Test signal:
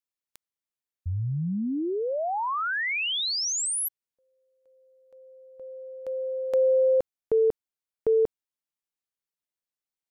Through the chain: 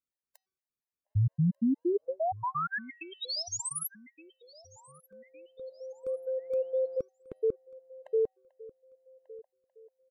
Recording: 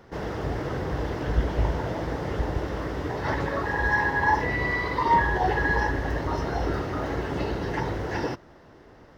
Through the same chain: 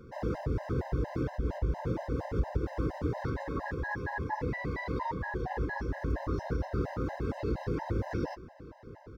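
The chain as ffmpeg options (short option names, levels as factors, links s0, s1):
-filter_complex "[0:a]equalizer=f=3100:w=3.3:g=-5.5,acompressor=threshold=0.0562:ratio=5:attack=0.16:release=338:knee=1:detection=peak,tiltshelf=f=660:g=4.5,bandreject=f=379.9:t=h:w=4,bandreject=f=759.8:t=h:w=4,bandreject=f=1139.7:t=h:w=4,bandreject=f=1519.6:t=h:w=4,bandreject=f=1899.5:t=h:w=4,bandreject=f=2279.4:t=h:w=4,bandreject=f=2659.3:t=h:w=4,bandreject=f=3039.2:t=h:w=4,bandreject=f=3419.1:t=h:w=4,bandreject=f=3799:t=h:w=4,bandreject=f=4178.9:t=h:w=4,bandreject=f=4558.8:t=h:w=4,bandreject=f=4938.7:t=h:w=4,bandreject=f=5318.6:t=h:w=4,bandreject=f=5698.5:t=h:w=4,bandreject=f=6078.4:t=h:w=4,asplit=2[s0][s1];[s1]adelay=1191,lowpass=f=5000:p=1,volume=0.1,asplit=2[s2][s3];[s3]adelay=1191,lowpass=f=5000:p=1,volume=0.38,asplit=2[s4][s5];[s5]adelay=1191,lowpass=f=5000:p=1,volume=0.38[s6];[s2][s4][s6]amix=inputs=3:normalize=0[s7];[s0][s7]amix=inputs=2:normalize=0,afftfilt=real='re*gt(sin(2*PI*4.3*pts/sr)*(1-2*mod(floor(b*sr/1024/530),2)),0)':imag='im*gt(sin(2*PI*4.3*pts/sr)*(1-2*mod(floor(b*sr/1024/530),2)),0)':win_size=1024:overlap=0.75"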